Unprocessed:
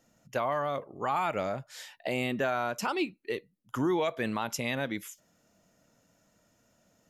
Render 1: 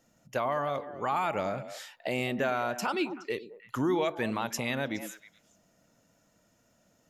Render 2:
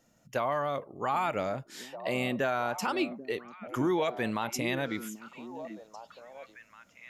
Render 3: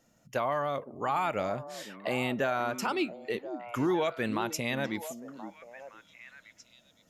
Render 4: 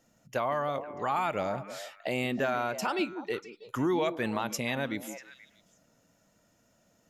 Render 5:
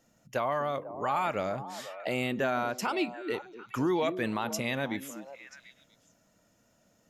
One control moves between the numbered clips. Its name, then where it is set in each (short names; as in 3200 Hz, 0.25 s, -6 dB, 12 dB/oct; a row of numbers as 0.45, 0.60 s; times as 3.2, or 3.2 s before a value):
delay with a stepping band-pass, time: 0.105, 0.788, 0.514, 0.16, 0.246 s